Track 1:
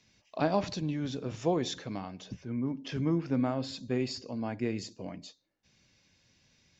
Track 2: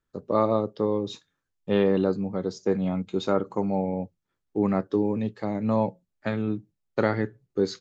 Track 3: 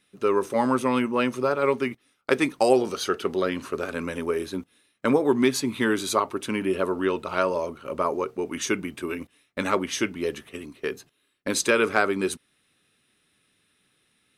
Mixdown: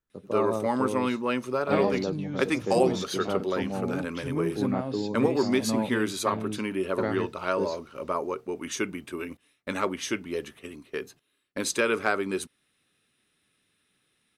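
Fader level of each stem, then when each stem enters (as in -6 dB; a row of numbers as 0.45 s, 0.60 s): -1.0 dB, -6.5 dB, -4.0 dB; 1.30 s, 0.00 s, 0.10 s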